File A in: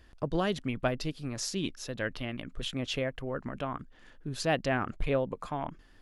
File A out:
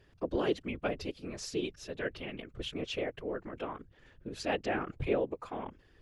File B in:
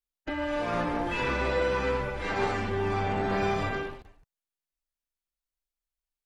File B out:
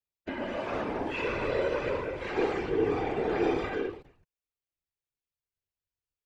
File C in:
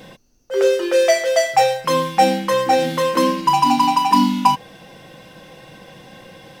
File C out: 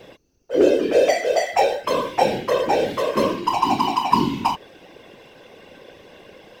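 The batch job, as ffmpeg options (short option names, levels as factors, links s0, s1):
-af "equalizer=f=160:t=o:w=0.67:g=-7,equalizer=f=400:t=o:w=0.67:g=10,equalizer=f=2500:t=o:w=0.67:g=4,equalizer=f=10000:t=o:w=0.67:g=-5,afftfilt=real='hypot(re,im)*cos(2*PI*random(0))':imag='hypot(re,im)*sin(2*PI*random(1))':win_size=512:overlap=0.75"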